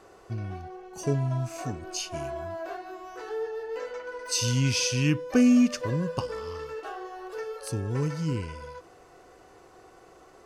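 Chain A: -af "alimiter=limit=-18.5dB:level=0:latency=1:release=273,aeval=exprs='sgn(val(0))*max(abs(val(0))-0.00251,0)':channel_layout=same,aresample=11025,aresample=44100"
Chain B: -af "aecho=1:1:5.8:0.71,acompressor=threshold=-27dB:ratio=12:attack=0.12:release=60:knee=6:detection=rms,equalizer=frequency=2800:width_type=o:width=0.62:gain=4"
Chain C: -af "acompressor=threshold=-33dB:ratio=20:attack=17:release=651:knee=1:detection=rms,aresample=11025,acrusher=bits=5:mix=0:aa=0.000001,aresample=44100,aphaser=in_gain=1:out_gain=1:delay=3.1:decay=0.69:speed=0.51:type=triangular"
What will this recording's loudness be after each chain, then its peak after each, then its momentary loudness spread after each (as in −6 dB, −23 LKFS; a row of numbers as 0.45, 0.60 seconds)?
−32.5, −35.0, −35.5 LKFS; −18.5, −23.5, −19.0 dBFS; 13, 19, 7 LU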